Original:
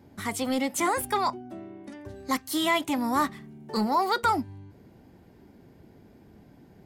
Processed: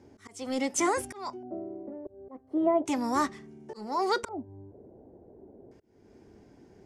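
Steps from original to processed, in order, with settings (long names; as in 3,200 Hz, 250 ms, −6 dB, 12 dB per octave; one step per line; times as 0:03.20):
volume swells 355 ms
auto-filter low-pass square 0.35 Hz 620–5,900 Hz
graphic EQ with 15 bands 160 Hz −5 dB, 400 Hz +7 dB, 4,000 Hz −6 dB, 10,000 Hz +7 dB
level −3 dB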